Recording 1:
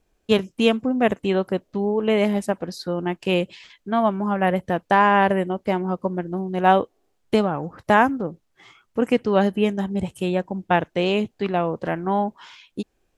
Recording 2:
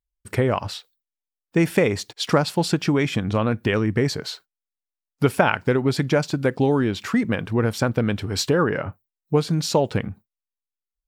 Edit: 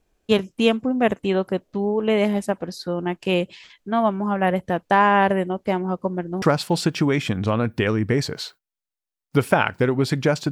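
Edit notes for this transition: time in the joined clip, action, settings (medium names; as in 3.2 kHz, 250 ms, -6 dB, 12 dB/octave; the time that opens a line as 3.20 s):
recording 1
6.42 s: go over to recording 2 from 2.29 s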